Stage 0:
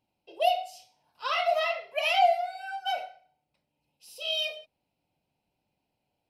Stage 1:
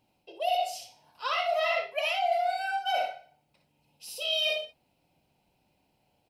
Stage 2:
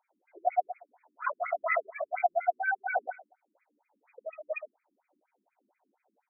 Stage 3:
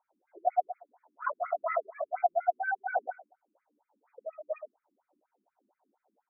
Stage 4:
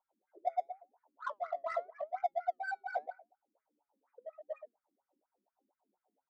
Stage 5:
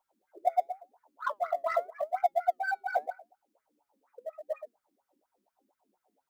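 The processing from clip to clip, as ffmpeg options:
-af "aecho=1:1:60|80:0.447|0.141,areverse,acompressor=threshold=0.0224:ratio=8,areverse,volume=2.51"
-af "lowshelf=f=390:g=-7.5,afftfilt=real='re*between(b*sr/1024,250*pow(1800/250,0.5+0.5*sin(2*PI*4.2*pts/sr))/1.41,250*pow(1800/250,0.5+0.5*sin(2*PI*4.2*pts/sr))*1.41)':imag='im*between(b*sr/1024,250*pow(1800/250,0.5+0.5*sin(2*PI*4.2*pts/sr))/1.41,250*pow(1800/250,0.5+0.5*sin(2*PI*4.2*pts/sr))*1.41)':win_size=1024:overlap=0.75,volume=2.11"
-af "lowpass=f=1500:w=0.5412,lowpass=f=1500:w=1.3066"
-af "adynamicsmooth=sensitivity=6:basefreq=2200,flanger=delay=3.6:depth=3.9:regen=80:speed=0.88:shape=sinusoidal,volume=0.841"
-af "acrusher=bits=9:mode=log:mix=0:aa=0.000001,volume=2.24"

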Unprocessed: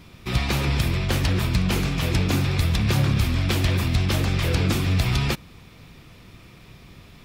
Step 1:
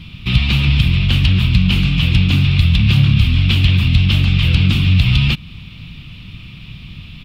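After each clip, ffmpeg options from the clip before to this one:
-filter_complex "[0:a]firequalizer=gain_entry='entry(170,0);entry(410,-19);entry(590,-18);entry(1200,-11);entry(1800,-12);entry(2800,5);entry(6100,-17)':delay=0.05:min_phase=1,asplit=2[s0][s1];[s1]acompressor=threshold=0.0316:ratio=6,volume=1.19[s2];[s0][s2]amix=inputs=2:normalize=0,volume=2.24"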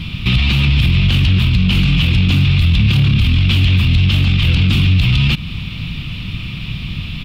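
-filter_complex "[0:a]asplit=2[s0][s1];[s1]asoftclip=type=tanh:threshold=0.335,volume=0.447[s2];[s0][s2]amix=inputs=2:normalize=0,alimiter=level_in=3.76:limit=0.891:release=50:level=0:latency=1,volume=0.562"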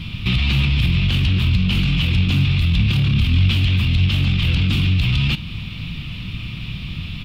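-af "flanger=delay=8.9:depth=8.8:regen=83:speed=0.54:shape=sinusoidal"

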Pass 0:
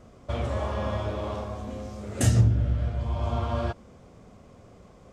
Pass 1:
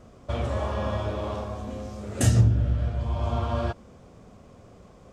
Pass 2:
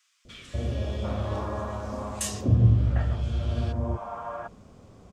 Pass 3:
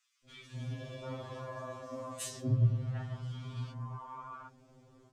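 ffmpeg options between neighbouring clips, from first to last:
-af "bandreject=f=2100:w=23,volume=1.12"
-filter_complex "[0:a]acrossover=split=580|1900[s0][s1][s2];[s0]adelay=250[s3];[s1]adelay=750[s4];[s3][s4][s2]amix=inputs=3:normalize=0"
-af "afftfilt=real='re*2.45*eq(mod(b,6),0)':imag='im*2.45*eq(mod(b,6),0)':win_size=2048:overlap=0.75,volume=0.473"

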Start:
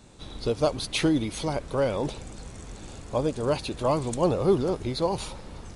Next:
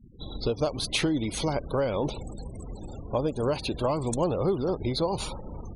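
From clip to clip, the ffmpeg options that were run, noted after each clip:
-af "afftfilt=real='re*gte(hypot(re,im),0.00891)':imag='im*gte(hypot(re,im),0.00891)':win_size=1024:overlap=0.75,acompressor=threshold=0.0501:ratio=5,volume=1.41"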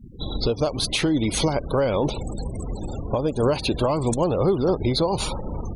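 -af "alimiter=limit=0.0891:level=0:latency=1:release=376,volume=2.82"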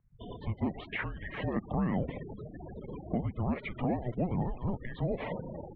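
-af "acompressor=threshold=0.0631:ratio=6,highpass=f=470:t=q:w=0.5412,highpass=f=470:t=q:w=1.307,lowpass=f=2500:t=q:w=0.5176,lowpass=f=2500:t=q:w=0.7071,lowpass=f=2500:t=q:w=1.932,afreqshift=-360"

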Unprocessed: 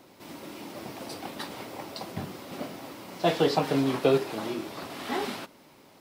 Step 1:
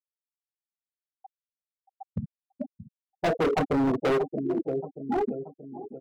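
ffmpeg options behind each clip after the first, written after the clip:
-filter_complex "[0:a]afftfilt=real='re*gte(hypot(re,im),0.141)':imag='im*gte(hypot(re,im),0.141)':win_size=1024:overlap=0.75,asplit=2[s0][s1];[s1]adelay=629,lowpass=f=1100:p=1,volume=0.178,asplit=2[s2][s3];[s3]adelay=629,lowpass=f=1100:p=1,volume=0.53,asplit=2[s4][s5];[s5]adelay=629,lowpass=f=1100:p=1,volume=0.53,asplit=2[s6][s7];[s7]adelay=629,lowpass=f=1100:p=1,volume=0.53,asplit=2[s8][s9];[s9]adelay=629,lowpass=f=1100:p=1,volume=0.53[s10];[s0][s2][s4][s6][s8][s10]amix=inputs=6:normalize=0,volume=29.9,asoftclip=hard,volume=0.0335,volume=2.51"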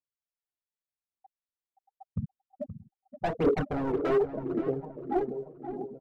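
-filter_complex "[0:a]highshelf=f=2800:g=-12,aphaser=in_gain=1:out_gain=1:delay=3.1:decay=0.62:speed=0.86:type=triangular,asplit=2[s0][s1];[s1]adelay=524,lowpass=f=2300:p=1,volume=0.299,asplit=2[s2][s3];[s3]adelay=524,lowpass=f=2300:p=1,volume=0.35,asplit=2[s4][s5];[s5]adelay=524,lowpass=f=2300:p=1,volume=0.35,asplit=2[s6][s7];[s7]adelay=524,lowpass=f=2300:p=1,volume=0.35[s8];[s2][s4][s6][s8]amix=inputs=4:normalize=0[s9];[s0][s9]amix=inputs=2:normalize=0,volume=0.596"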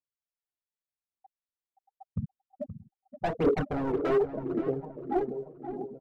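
-af anull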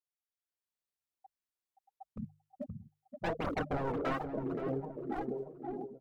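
-af "afftfilt=real='re*lt(hypot(re,im),0.251)':imag='im*lt(hypot(re,im),0.251)':win_size=1024:overlap=0.75,bandreject=f=50:t=h:w=6,bandreject=f=100:t=h:w=6,bandreject=f=150:t=h:w=6,dynaudnorm=f=220:g=5:m=2.11,volume=0.422"

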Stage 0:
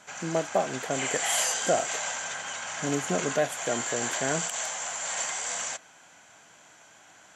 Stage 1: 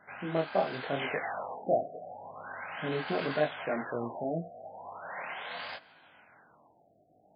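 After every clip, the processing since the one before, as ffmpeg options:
-af "flanger=delay=19:depth=7.2:speed=0.84,afftfilt=real='re*lt(b*sr/1024,750*pow(5100/750,0.5+0.5*sin(2*PI*0.39*pts/sr)))':imag='im*lt(b*sr/1024,750*pow(5100/750,0.5+0.5*sin(2*PI*0.39*pts/sr)))':win_size=1024:overlap=0.75"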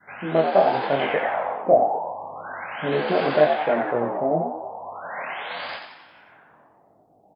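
-filter_complex "[0:a]adynamicequalizer=threshold=0.00708:dfrequency=570:dqfactor=1:tfrequency=570:tqfactor=1:attack=5:release=100:ratio=0.375:range=3:mode=boostabove:tftype=bell,asplit=2[s0][s1];[s1]asplit=6[s2][s3][s4][s5][s6][s7];[s2]adelay=89,afreqshift=75,volume=0.501[s8];[s3]adelay=178,afreqshift=150,volume=0.251[s9];[s4]adelay=267,afreqshift=225,volume=0.126[s10];[s5]adelay=356,afreqshift=300,volume=0.0624[s11];[s6]adelay=445,afreqshift=375,volume=0.0313[s12];[s7]adelay=534,afreqshift=450,volume=0.0157[s13];[s8][s9][s10][s11][s12][s13]amix=inputs=6:normalize=0[s14];[s0][s14]amix=inputs=2:normalize=0,volume=2"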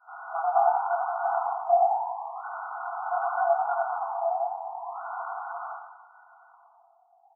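-af "afftfilt=real='re*between(b*sr/4096,660,1500)':imag='im*between(b*sr/4096,660,1500)':win_size=4096:overlap=0.75"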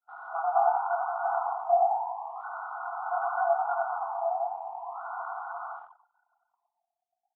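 -af "anlmdn=0.158,crystalizer=i=3:c=0,volume=0.75"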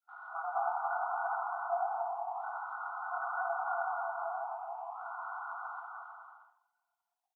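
-filter_complex "[0:a]highpass=1200,asplit=2[s0][s1];[s1]aecho=0:1:280|462|580.3|657.2|707.2:0.631|0.398|0.251|0.158|0.1[s2];[s0][s2]amix=inputs=2:normalize=0,volume=0.841"

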